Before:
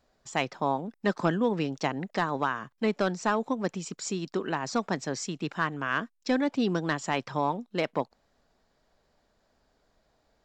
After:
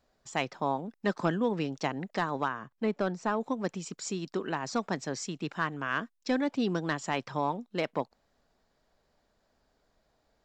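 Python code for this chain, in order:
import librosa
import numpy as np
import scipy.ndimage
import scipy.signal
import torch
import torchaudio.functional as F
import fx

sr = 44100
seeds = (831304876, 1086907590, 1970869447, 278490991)

y = fx.high_shelf(x, sr, hz=2300.0, db=-8.5, at=(2.48, 3.41))
y = y * librosa.db_to_amplitude(-2.5)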